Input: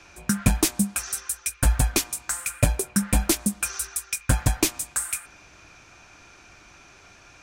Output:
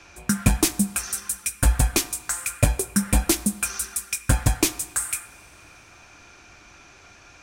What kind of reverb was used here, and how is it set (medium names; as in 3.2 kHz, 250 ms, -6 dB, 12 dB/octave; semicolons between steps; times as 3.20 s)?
two-slope reverb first 0.35 s, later 2.5 s, from -17 dB, DRR 13 dB; trim +1 dB